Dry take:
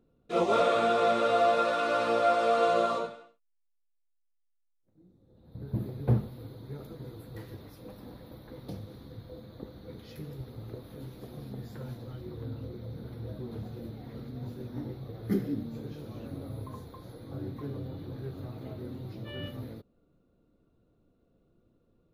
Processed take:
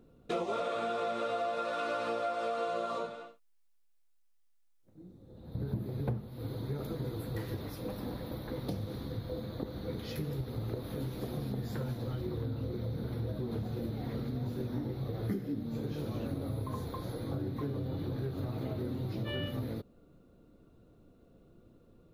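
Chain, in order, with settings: compressor 8:1, threshold -40 dBFS, peak gain reduction 20 dB; gain +8 dB

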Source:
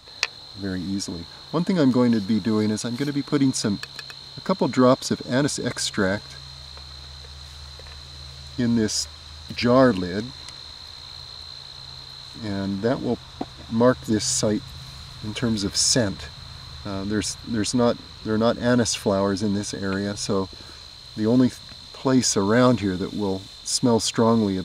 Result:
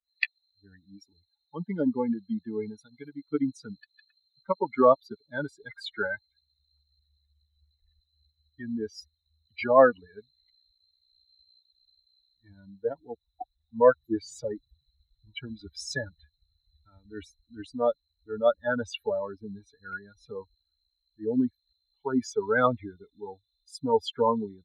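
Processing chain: per-bin expansion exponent 3; three-band isolator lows -14 dB, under 350 Hz, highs -24 dB, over 2900 Hz; gain +5.5 dB

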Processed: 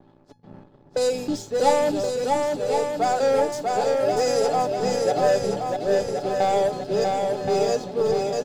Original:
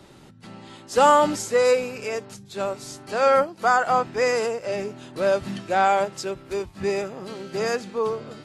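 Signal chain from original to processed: slices in reverse order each 0.32 s, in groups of 3; low-pass opened by the level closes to 920 Hz, open at -18.5 dBFS; band shelf 1600 Hz -13 dB; comb 6.9 ms, depth 36%; sample leveller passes 2; AGC gain up to 9 dB; resonator 850 Hz, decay 0.2 s, harmonics all, mix 80%; on a send: swung echo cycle 1.073 s, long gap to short 1.5:1, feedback 47%, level -3 dB

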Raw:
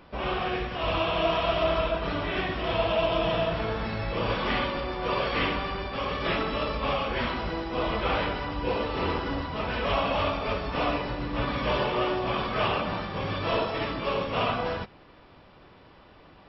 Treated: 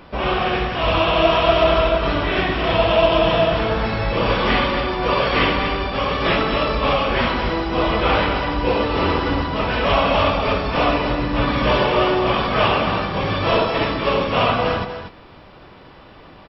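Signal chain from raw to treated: echo 0.239 s -9 dB; gain +9 dB

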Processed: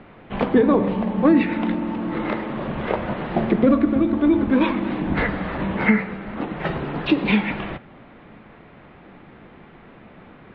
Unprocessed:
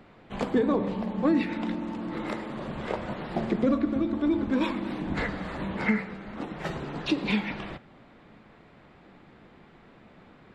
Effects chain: LPF 3300 Hz 24 dB/oct; gain +8 dB

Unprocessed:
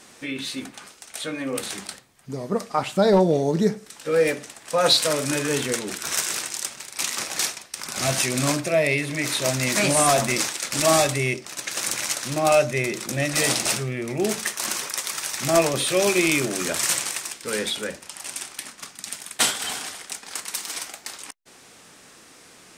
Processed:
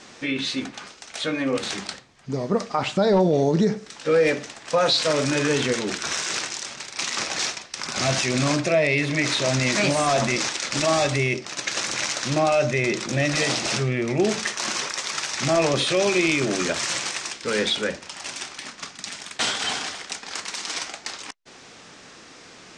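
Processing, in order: limiter -15.5 dBFS, peak gain reduction 9 dB; LPF 6600 Hz 24 dB/oct; gain +4.5 dB

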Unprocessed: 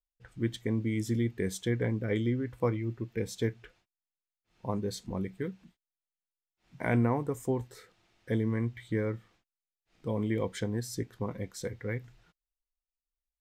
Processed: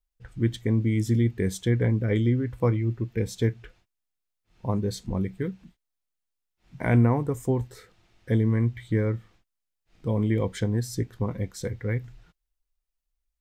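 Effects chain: low shelf 130 Hz +11 dB; gain +3 dB

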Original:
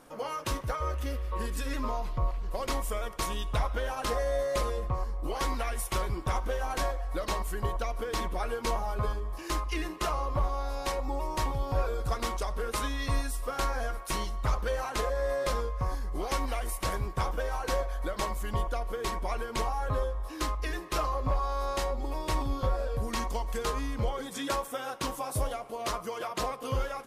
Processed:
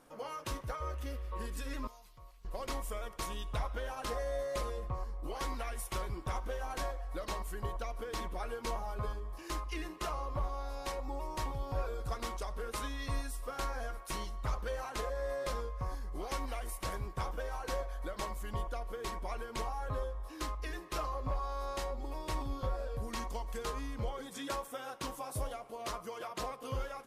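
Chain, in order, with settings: 1.87–2.45 pre-emphasis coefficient 0.9; gain -7 dB

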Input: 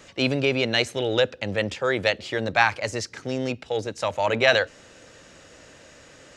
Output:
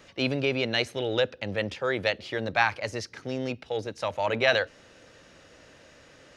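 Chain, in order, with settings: bell 7600 Hz -9.5 dB 0.39 oct; gain -4 dB

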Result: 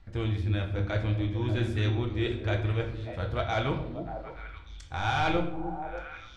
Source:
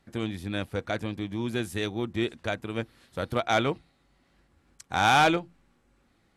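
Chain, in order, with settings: LPF 5000 Hz 12 dB/oct; resonant low shelf 120 Hz +13.5 dB, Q 1.5; reverse; compressor, threshold -30 dBFS, peak gain reduction 12.5 dB; reverse; flange 1.9 Hz, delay 0.8 ms, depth 2.5 ms, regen -70%; on a send: delay with a stepping band-pass 0.294 s, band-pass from 250 Hz, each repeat 1.4 oct, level -4.5 dB; on the sum: shoebox room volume 150 m³, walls mixed, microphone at 0.64 m; gain +7 dB

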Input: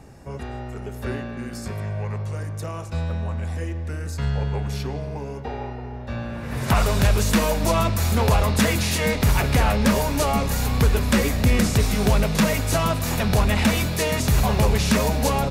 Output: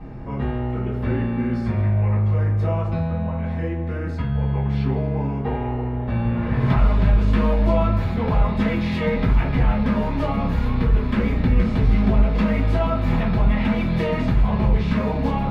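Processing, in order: compressor, threshold -27 dBFS, peak gain reduction 12.5 dB; air absorption 380 m; reverb RT60 0.35 s, pre-delay 3 ms, DRR -8 dB

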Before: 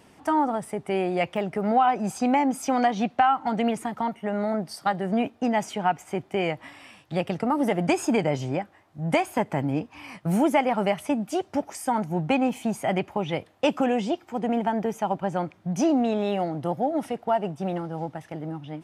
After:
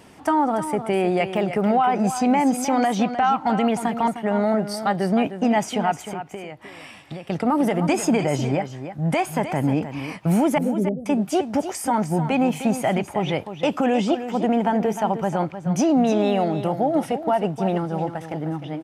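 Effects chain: 10.58–11.06 inverse Chebyshev low-pass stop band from 870 Hz, stop band 40 dB; limiter -17.5 dBFS, peak gain reduction 9 dB; 6.05–7.3 compressor 6:1, threshold -38 dBFS, peak gain reduction 13.5 dB; echo 0.307 s -10.5 dB; gain +6 dB

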